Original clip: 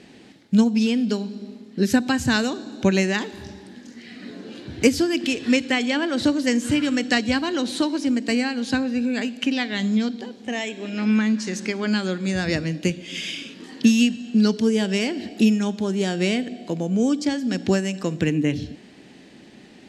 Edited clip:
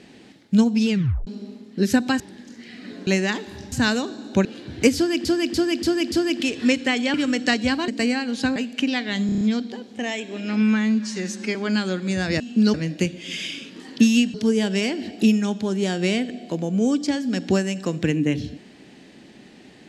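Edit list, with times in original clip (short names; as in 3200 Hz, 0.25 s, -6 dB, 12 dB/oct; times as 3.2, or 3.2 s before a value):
0.89 tape stop 0.38 s
2.2–2.93 swap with 3.58–4.45
4.96–5.25 loop, 5 plays
5.98–6.78 cut
7.52–8.17 cut
8.85–9.2 cut
9.9 stutter 0.03 s, 6 plays
11.11–11.73 stretch 1.5×
14.18–14.52 move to 12.58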